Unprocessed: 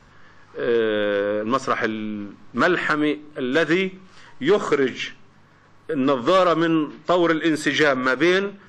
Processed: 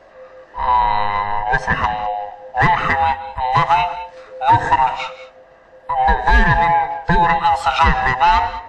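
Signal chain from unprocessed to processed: band-swap scrambler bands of 500 Hz; high shelf 2900 Hz -10.5 dB; non-linear reverb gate 0.23 s rising, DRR 12 dB; gain +6 dB

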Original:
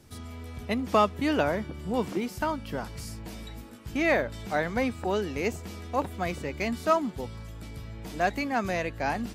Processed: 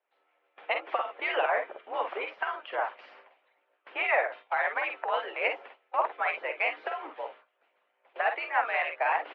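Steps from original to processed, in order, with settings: gate with hold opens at -29 dBFS; mistuned SSB +65 Hz 490–2800 Hz; limiter -22.5 dBFS, peak gain reduction 10.5 dB; on a send: early reflections 48 ms -5 dB, 61 ms -9.5 dB; on the sum: harmonic-percussive split harmonic -16 dB; gain +8.5 dB

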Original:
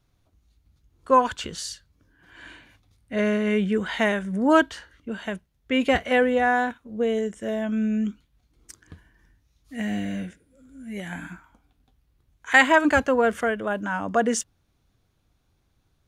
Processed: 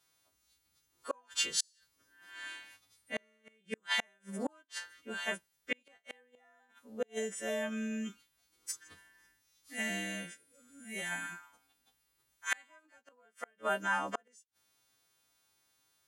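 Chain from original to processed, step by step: frequency quantiser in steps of 2 st; flipped gate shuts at -15 dBFS, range -39 dB; HPF 680 Hz 6 dB/oct; gain -3 dB

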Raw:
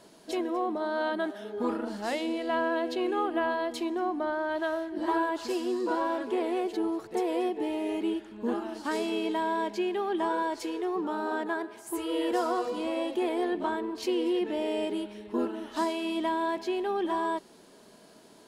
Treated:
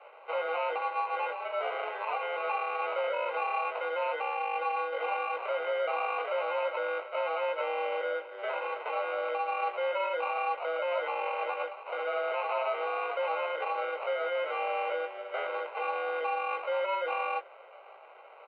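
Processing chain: octaver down 1 oct, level -1 dB; limiter -27 dBFS, peak gain reduction 11.5 dB; 0.76–2.36 frequency shift +25 Hz; sample-rate reducer 1600 Hz, jitter 0%; doubler 19 ms -6 dB; mistuned SSB +170 Hz 350–2700 Hz; gain +4.5 dB

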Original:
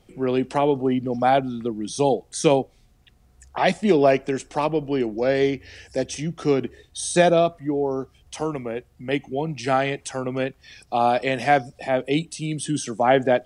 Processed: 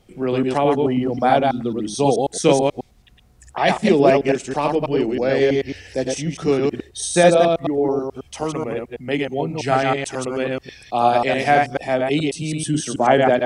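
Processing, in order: reverse delay 0.108 s, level -2 dB; gain +1.5 dB

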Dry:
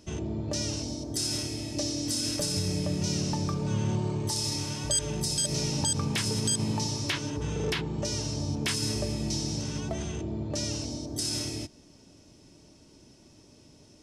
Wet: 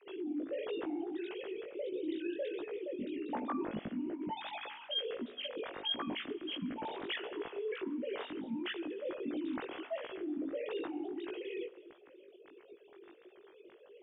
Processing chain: sine-wave speech; reverse; compressor 4:1, threshold -37 dBFS, peak gain reduction 16 dB; reverse; rotary speaker horn 0.8 Hz, later 8 Hz, at 11.17; chorus 1.5 Hz, delay 16.5 ms, depth 3.8 ms; spring tank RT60 1.8 s, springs 40/44 ms, chirp 25 ms, DRR 20 dB; gain +4 dB

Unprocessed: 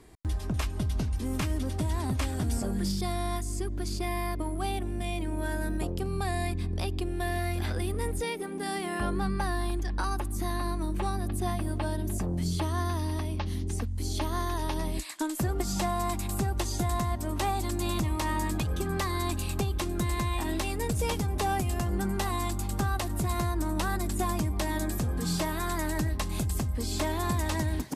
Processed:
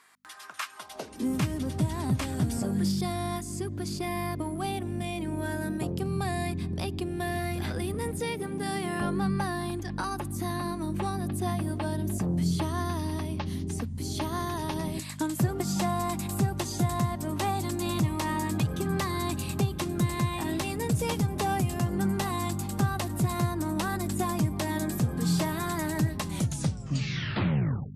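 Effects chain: tape stop at the end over 1.71 s; hum 50 Hz, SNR 12 dB; high-pass sweep 1300 Hz -> 130 Hz, 0.75–1.42

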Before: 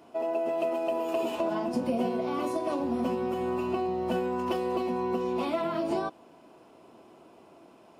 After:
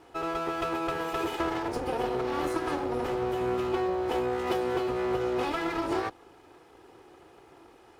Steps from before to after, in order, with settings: minimum comb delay 2.4 ms; HPF 45 Hz; gain +2 dB

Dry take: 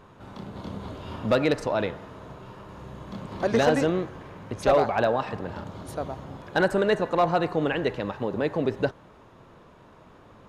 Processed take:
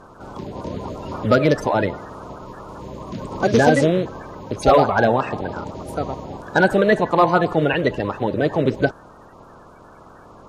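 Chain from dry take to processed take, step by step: bin magnitudes rounded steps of 30 dB; gain +7.5 dB

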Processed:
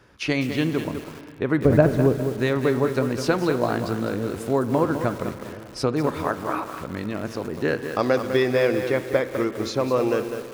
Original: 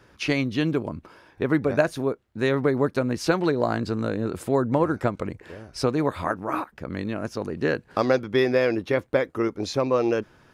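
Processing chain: 1.65–2.26 tilt -4 dB/oct; spring tank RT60 2.9 s, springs 33/39/50 ms, chirp 25 ms, DRR 11.5 dB; lo-fi delay 0.203 s, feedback 35%, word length 6-bit, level -8 dB

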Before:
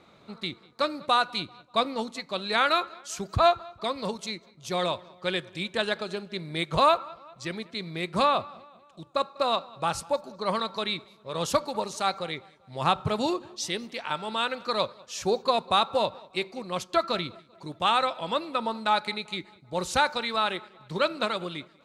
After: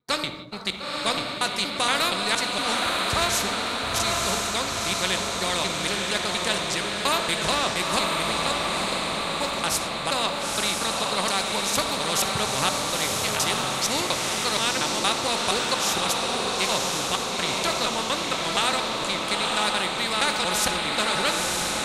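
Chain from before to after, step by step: slices in reverse order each 0.235 s, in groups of 4; high shelf 3200 Hz +6 dB; expander -43 dBFS; diffused feedback echo 0.951 s, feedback 48%, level -3.5 dB; on a send at -10.5 dB: reverb RT60 0.55 s, pre-delay 4 ms; on the sum: spectral compressor 2:1

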